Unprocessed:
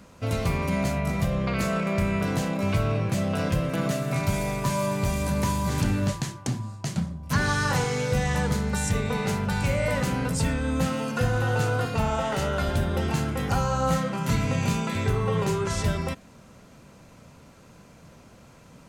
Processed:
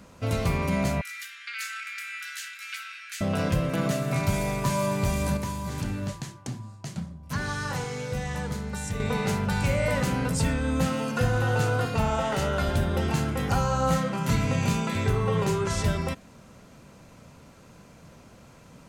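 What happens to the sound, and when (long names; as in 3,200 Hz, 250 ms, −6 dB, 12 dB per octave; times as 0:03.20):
0:01.01–0:03.21: Butterworth high-pass 1,400 Hz 72 dB per octave
0:05.37–0:09.00: clip gain −6.5 dB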